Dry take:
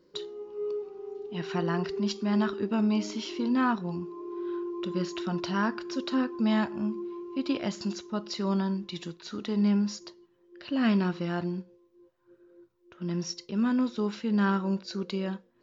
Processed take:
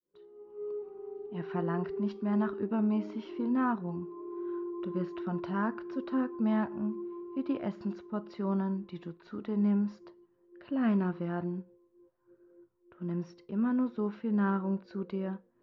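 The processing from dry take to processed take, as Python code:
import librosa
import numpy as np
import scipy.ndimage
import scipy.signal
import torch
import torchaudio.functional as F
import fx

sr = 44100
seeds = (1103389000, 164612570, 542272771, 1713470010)

y = fx.fade_in_head(x, sr, length_s=0.91)
y = scipy.signal.sosfilt(scipy.signal.butter(2, 1500.0, 'lowpass', fs=sr, output='sos'), y)
y = F.gain(torch.from_numpy(y), -3.0).numpy()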